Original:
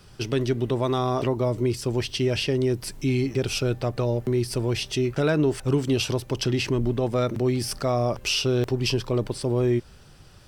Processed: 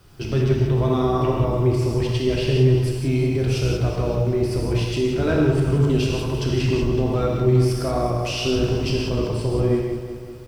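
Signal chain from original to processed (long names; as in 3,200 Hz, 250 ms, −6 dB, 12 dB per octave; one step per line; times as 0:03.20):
sub-octave generator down 1 octave, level −2 dB
high-shelf EQ 2,700 Hz −7 dB
background noise white −65 dBFS
on a send: repeating echo 188 ms, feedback 60%, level −10 dB
on the sum: reverb whose tail is shaped and stops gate 200 ms flat, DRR −2 dB
level −1.5 dB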